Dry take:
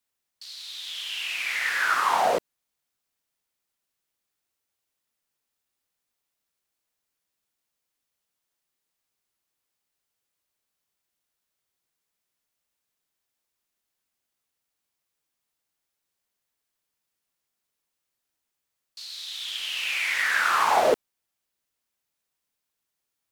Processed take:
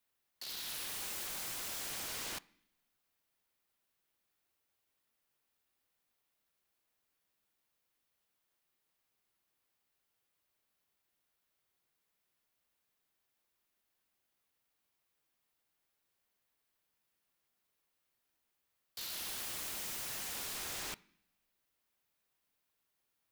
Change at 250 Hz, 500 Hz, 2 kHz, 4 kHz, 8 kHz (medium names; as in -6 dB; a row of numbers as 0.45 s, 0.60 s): -13.0 dB, -26.0 dB, -22.0 dB, -12.5 dB, -2.5 dB